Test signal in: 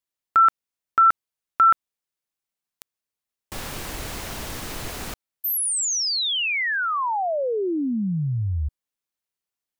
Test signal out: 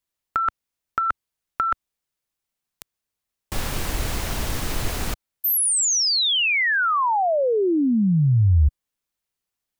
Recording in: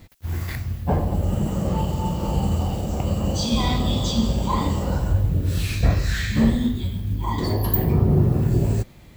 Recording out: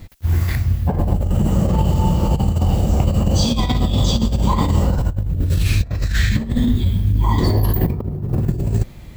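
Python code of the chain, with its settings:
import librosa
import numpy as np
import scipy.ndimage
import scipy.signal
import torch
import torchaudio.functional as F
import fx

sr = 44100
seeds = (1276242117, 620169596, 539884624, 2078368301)

y = fx.low_shelf(x, sr, hz=110.0, db=8.5)
y = fx.over_compress(y, sr, threshold_db=-18.0, ratio=-0.5)
y = y * 10.0 ** (2.5 / 20.0)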